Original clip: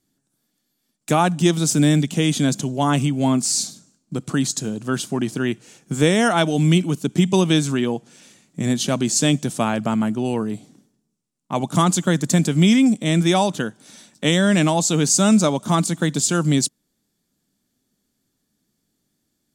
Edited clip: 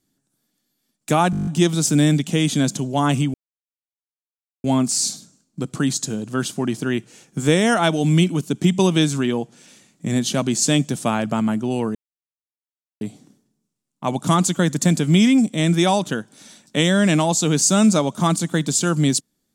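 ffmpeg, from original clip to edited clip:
-filter_complex "[0:a]asplit=11[s0][s1][s2][s3][s4][s5][s6][s7][s8][s9][s10];[s0]atrim=end=1.332[s11];[s1]atrim=start=1.308:end=1.332[s12];[s2]atrim=start=1.308:end=1.332[s13];[s3]atrim=start=1.308:end=1.332[s14];[s4]atrim=start=1.308:end=1.332[s15];[s5]atrim=start=1.308:end=1.332[s16];[s6]atrim=start=1.308:end=1.332[s17];[s7]atrim=start=1.308:end=1.332[s18];[s8]atrim=start=1.308:end=3.18,asetpts=PTS-STARTPTS,afade=t=out:st=1.868:d=0.004:c=hsin,apad=pad_dur=1.3[s19];[s9]atrim=start=3.18:end=10.49,asetpts=PTS-STARTPTS,afade=t=in:d=0.004:c=hsin,afade=t=out:st=7.306:d=0.004:c=hsin,apad=pad_dur=1.06[s20];[s10]atrim=start=10.49,asetpts=PTS-STARTPTS,afade=t=in:d=0.004:c=hsin[s21];[s11][s12]acrossfade=d=0.004:c1=hsin:c2=hsin[s22];[s22][s13]acrossfade=d=0.004:c1=hsin:c2=hsin[s23];[s23][s14]acrossfade=d=0.004:c1=hsin:c2=hsin[s24];[s24][s15]acrossfade=d=0.004:c1=hsin:c2=hsin[s25];[s25][s16]acrossfade=d=0.004:c1=hsin:c2=hsin[s26];[s26][s17]acrossfade=d=0.004:c1=hsin:c2=hsin[s27];[s27][s18]acrossfade=d=0.004:c1=hsin:c2=hsin[s28];[s19][s20][s21]concat=n=3:v=0:a=1[s29];[s28][s29]acrossfade=d=0.004:c1=hsin:c2=hsin"

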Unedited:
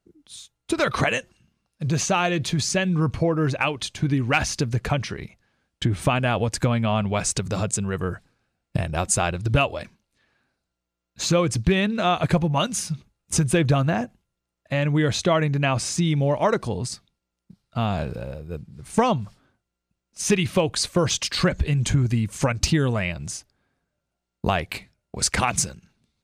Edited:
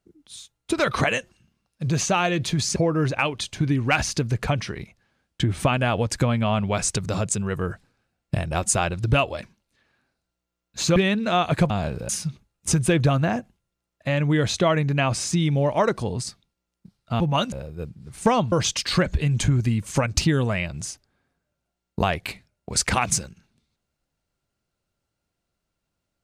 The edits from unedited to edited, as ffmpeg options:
-filter_complex "[0:a]asplit=8[s0][s1][s2][s3][s4][s5][s6][s7];[s0]atrim=end=2.762[s8];[s1]atrim=start=3.178:end=11.382[s9];[s2]atrim=start=11.678:end=12.422[s10];[s3]atrim=start=17.848:end=18.242[s11];[s4]atrim=start=12.738:end=17.852[s12];[s5]atrim=start=12.418:end=12.742[s13];[s6]atrim=start=18.238:end=19.242[s14];[s7]atrim=start=20.978[s15];[s8][s9]acrossfade=d=0.004:c1=hsin:c2=hsin[s16];[s16][s10]acrossfade=d=0.004:c1=hsin:c2=hsin[s17];[s17][s11]acrossfade=d=0.004:c1=hsin:c2=hsin[s18];[s18][s12]acrossfade=d=0.004:c1=hsin:c2=hsin[s19];[s19][s13]acrossfade=d=0.004:c1=hsin:c2=hsin[s20];[s20][s14]acrossfade=d=0.004:c1=hsin:c2=hsin[s21];[s21][s15]acrossfade=d=0.004:c1=hsin:c2=hsin"

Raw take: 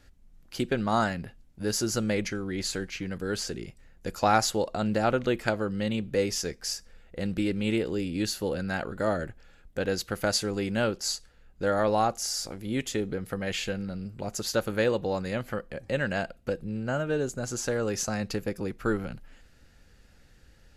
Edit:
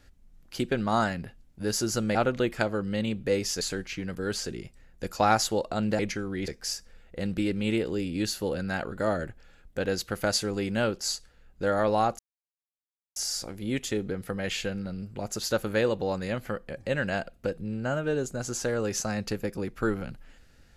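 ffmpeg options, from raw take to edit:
-filter_complex "[0:a]asplit=6[s0][s1][s2][s3][s4][s5];[s0]atrim=end=2.152[s6];[s1]atrim=start=5.018:end=6.482[s7];[s2]atrim=start=2.638:end=5.022[s8];[s3]atrim=start=2.148:end=2.642[s9];[s4]atrim=start=6.478:end=12.19,asetpts=PTS-STARTPTS,afade=t=out:st=5.708:d=0.004:c=hsin,apad=pad_dur=0.97[s10];[s5]atrim=start=12.19,asetpts=PTS-STARTPTS,afade=t=in:d=0.004:c=hsin[s11];[s6][s7]acrossfade=d=0.004:c1=hsin:c2=hsin[s12];[s12][s8]acrossfade=d=0.004:c1=hsin:c2=hsin[s13];[s13][s9]acrossfade=d=0.004:c1=hsin:c2=hsin[s14];[s10][s11]concat=n=2:v=0:a=1[s15];[s14][s15]acrossfade=d=0.004:c1=hsin:c2=hsin"

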